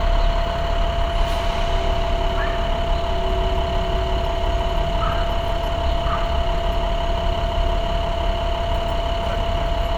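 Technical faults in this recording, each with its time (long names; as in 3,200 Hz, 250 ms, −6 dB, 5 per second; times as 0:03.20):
whistle 680 Hz −25 dBFS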